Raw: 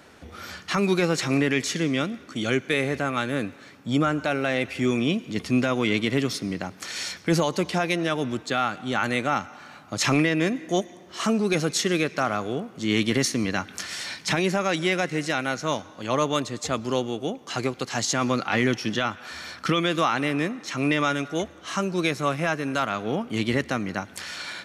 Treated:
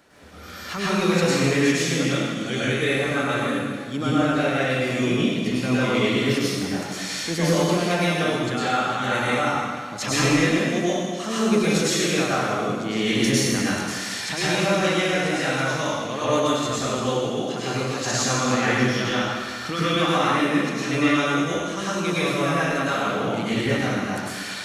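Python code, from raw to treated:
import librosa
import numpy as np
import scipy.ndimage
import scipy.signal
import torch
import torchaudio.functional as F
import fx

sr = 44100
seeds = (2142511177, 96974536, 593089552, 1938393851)

y = fx.high_shelf(x, sr, hz=8900.0, db=4.0)
y = fx.hum_notches(y, sr, base_hz=50, count=3)
y = fx.rev_plate(y, sr, seeds[0], rt60_s=1.7, hf_ratio=0.95, predelay_ms=90, drr_db=-9.5)
y = y * 10.0 ** (-7.0 / 20.0)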